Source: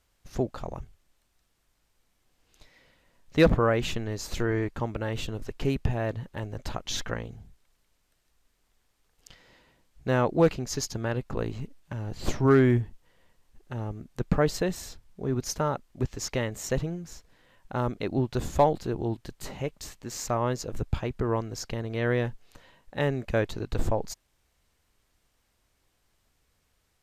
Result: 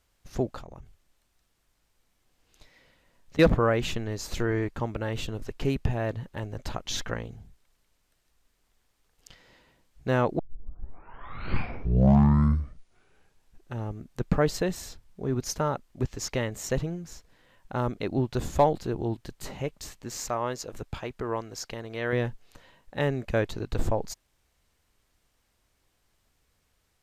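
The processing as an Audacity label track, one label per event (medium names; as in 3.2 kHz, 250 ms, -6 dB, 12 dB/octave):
0.600000	3.390000	compression, threshold -40 dBFS
10.390000	10.390000	tape start 3.40 s
20.290000	22.130000	bass shelf 280 Hz -10.5 dB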